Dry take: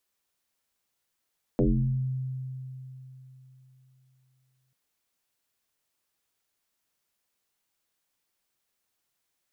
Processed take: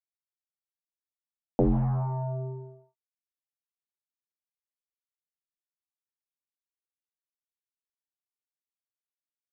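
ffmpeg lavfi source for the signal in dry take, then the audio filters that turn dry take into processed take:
-f lavfi -i "aevalsrc='0.119*pow(10,-3*t/3.53)*sin(2*PI*130*t+5*pow(10,-3*t/0.79)*sin(2*PI*0.69*130*t))':duration=3.14:sample_rate=44100"
-af "aresample=16000,acrusher=bits=5:mix=0:aa=0.5,aresample=44100,lowpass=frequency=810:width_type=q:width=4.9"

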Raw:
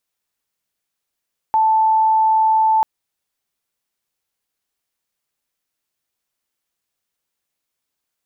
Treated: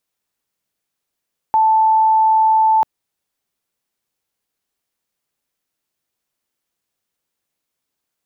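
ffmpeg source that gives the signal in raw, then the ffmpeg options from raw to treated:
-f lavfi -i "aevalsrc='0.266*sin(2*PI*879*t)':duration=1.29:sample_rate=44100"
-af "equalizer=frequency=240:width=0.35:gain=4"

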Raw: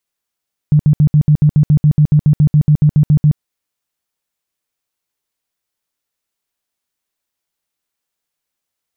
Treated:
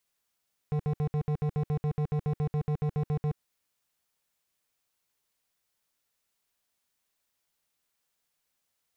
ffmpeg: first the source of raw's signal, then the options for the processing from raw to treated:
-f lavfi -i "aevalsrc='0.531*sin(2*PI*150*mod(t,0.14))*lt(mod(t,0.14),11/150)':duration=2.66:sample_rate=44100"
-af "alimiter=limit=-16.5dB:level=0:latency=1:release=25,equalizer=frequency=330:width=3:gain=-3.5,volume=27dB,asoftclip=hard,volume=-27dB"

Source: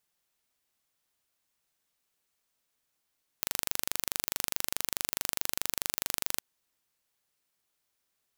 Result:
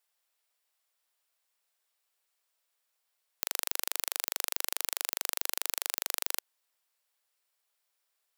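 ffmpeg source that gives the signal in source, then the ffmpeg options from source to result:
-f lavfi -i "aevalsrc='0.794*eq(mod(n,1785),0)':duration=2.96:sample_rate=44100"
-af "highpass=frequency=470:width=0.5412,highpass=frequency=470:width=1.3066,bandreject=frequency=6300:width=15"

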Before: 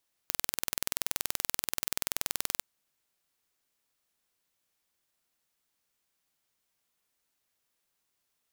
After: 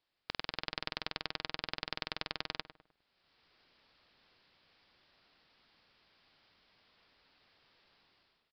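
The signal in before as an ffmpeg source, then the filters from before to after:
-f lavfi -i "aevalsrc='0.794*eq(mod(n,2110),0)':duration=2.3:sample_rate=44100"
-filter_complex "[0:a]dynaudnorm=framelen=210:gausssize=5:maxgain=16dB,aresample=11025,volume=17dB,asoftclip=hard,volume=-17dB,aresample=44100,asplit=2[link_01][link_02];[link_02]adelay=102,lowpass=frequency=1600:poles=1,volume=-11dB,asplit=2[link_03][link_04];[link_04]adelay=102,lowpass=frequency=1600:poles=1,volume=0.4,asplit=2[link_05][link_06];[link_06]adelay=102,lowpass=frequency=1600:poles=1,volume=0.4,asplit=2[link_07][link_08];[link_08]adelay=102,lowpass=frequency=1600:poles=1,volume=0.4[link_09];[link_01][link_03][link_05][link_07][link_09]amix=inputs=5:normalize=0"

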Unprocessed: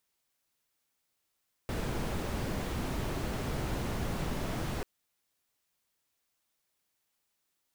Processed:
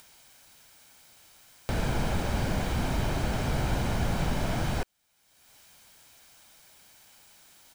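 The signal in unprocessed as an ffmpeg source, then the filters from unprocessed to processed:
-f lavfi -i "anoisesrc=color=brown:amplitude=0.0989:duration=3.14:sample_rate=44100:seed=1"
-filter_complex "[0:a]equalizer=frequency=16000:width=0.84:gain=-7.5,aecho=1:1:1.3:0.33,asplit=2[link_01][link_02];[link_02]acompressor=mode=upward:threshold=-34dB:ratio=2.5,volume=-1.5dB[link_03];[link_01][link_03]amix=inputs=2:normalize=0"

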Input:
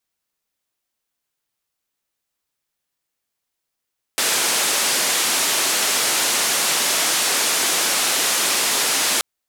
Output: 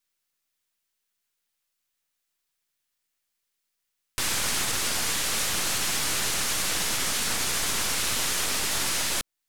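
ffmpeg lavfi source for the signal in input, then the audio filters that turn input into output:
-f lavfi -i "anoisesrc=color=white:duration=5.03:sample_rate=44100:seed=1,highpass=frequency=270,lowpass=frequency=10000,volume=-11.2dB"
-filter_complex "[0:a]acrossover=split=1100[link_01][link_02];[link_01]aeval=exprs='abs(val(0))':channel_layout=same[link_03];[link_02]alimiter=limit=-19dB:level=0:latency=1:release=282[link_04];[link_03][link_04]amix=inputs=2:normalize=0"

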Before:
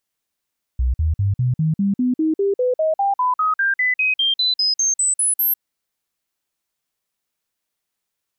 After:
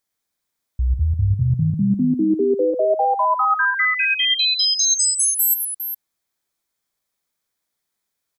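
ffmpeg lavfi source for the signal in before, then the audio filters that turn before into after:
-f lavfi -i "aevalsrc='0.178*clip(min(mod(t,0.2),0.15-mod(t,0.2))/0.005,0,1)*sin(2*PI*62.6*pow(2,floor(t/0.2)/3)*mod(t,0.2))':duration=4.8:sample_rate=44100"
-af "bandreject=frequency=2800:width=6.7,aecho=1:1:111|407:0.422|0.376"

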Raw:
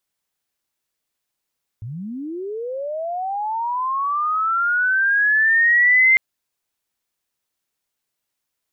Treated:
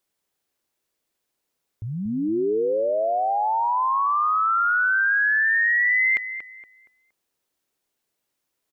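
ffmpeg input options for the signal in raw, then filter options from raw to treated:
-f lavfi -i "aevalsrc='pow(10,(-28+18*t/4.35)/20)*sin(2*PI*(100*t+2000*t*t/(2*4.35)))':duration=4.35:sample_rate=44100"
-filter_complex "[0:a]equalizer=frequency=390:width_type=o:width=1.6:gain=6.5,acompressor=threshold=-19dB:ratio=6,asplit=2[link_01][link_02];[link_02]adelay=234,lowpass=frequency=2000:poles=1,volume=-9dB,asplit=2[link_03][link_04];[link_04]adelay=234,lowpass=frequency=2000:poles=1,volume=0.38,asplit=2[link_05][link_06];[link_06]adelay=234,lowpass=frequency=2000:poles=1,volume=0.38,asplit=2[link_07][link_08];[link_08]adelay=234,lowpass=frequency=2000:poles=1,volume=0.38[link_09];[link_01][link_03][link_05][link_07][link_09]amix=inputs=5:normalize=0"

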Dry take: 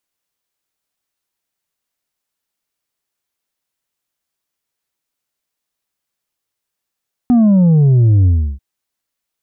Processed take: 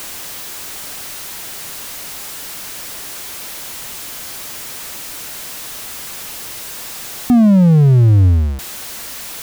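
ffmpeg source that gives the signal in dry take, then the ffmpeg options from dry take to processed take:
-f lavfi -i "aevalsrc='0.422*clip((1.29-t)/0.33,0,1)*tanh(1.58*sin(2*PI*250*1.29/log(65/250)*(exp(log(65/250)*t/1.29)-1)))/tanh(1.58)':duration=1.29:sample_rate=44100"
-af "aeval=exprs='val(0)+0.5*0.0708*sgn(val(0))':channel_layout=same"

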